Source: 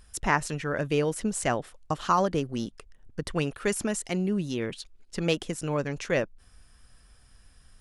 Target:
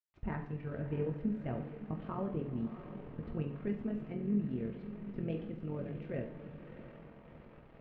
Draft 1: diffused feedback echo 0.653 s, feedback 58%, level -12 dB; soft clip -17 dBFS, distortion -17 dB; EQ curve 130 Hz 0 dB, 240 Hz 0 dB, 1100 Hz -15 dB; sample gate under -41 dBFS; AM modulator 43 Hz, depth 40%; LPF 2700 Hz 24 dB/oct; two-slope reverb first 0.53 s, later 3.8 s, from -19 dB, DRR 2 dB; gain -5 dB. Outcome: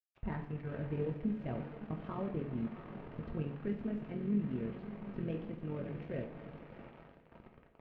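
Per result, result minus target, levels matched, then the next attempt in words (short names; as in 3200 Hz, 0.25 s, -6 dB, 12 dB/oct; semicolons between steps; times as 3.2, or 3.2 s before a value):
soft clip: distortion +10 dB; sample gate: distortion +8 dB
diffused feedback echo 0.653 s, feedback 58%, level -12 dB; soft clip -10 dBFS, distortion -27 dB; EQ curve 130 Hz 0 dB, 240 Hz 0 dB, 1100 Hz -15 dB; sample gate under -41 dBFS; AM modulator 43 Hz, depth 40%; LPF 2700 Hz 24 dB/oct; two-slope reverb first 0.53 s, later 3.8 s, from -19 dB, DRR 2 dB; gain -5 dB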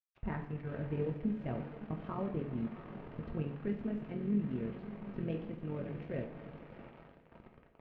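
sample gate: distortion +8 dB
diffused feedback echo 0.653 s, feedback 58%, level -12 dB; soft clip -10 dBFS, distortion -27 dB; EQ curve 130 Hz 0 dB, 240 Hz 0 dB, 1100 Hz -15 dB; sample gate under -47 dBFS; AM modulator 43 Hz, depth 40%; LPF 2700 Hz 24 dB/oct; two-slope reverb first 0.53 s, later 3.8 s, from -19 dB, DRR 2 dB; gain -5 dB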